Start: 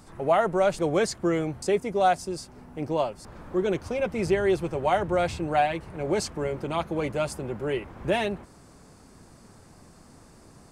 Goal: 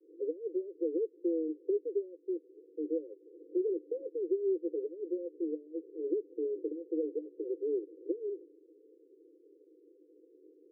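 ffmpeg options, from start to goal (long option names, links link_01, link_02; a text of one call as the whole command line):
ffmpeg -i in.wav -af "acompressor=threshold=-27dB:ratio=6,asuperpass=centerf=390:order=20:qfactor=1.8" out.wav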